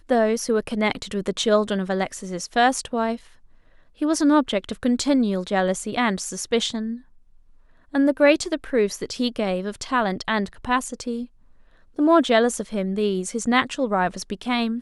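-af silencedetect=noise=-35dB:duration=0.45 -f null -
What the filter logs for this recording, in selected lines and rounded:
silence_start: 3.17
silence_end: 4.01 | silence_duration: 0.85
silence_start: 6.97
silence_end: 7.94 | silence_duration: 0.96
silence_start: 11.25
silence_end: 11.99 | silence_duration: 0.74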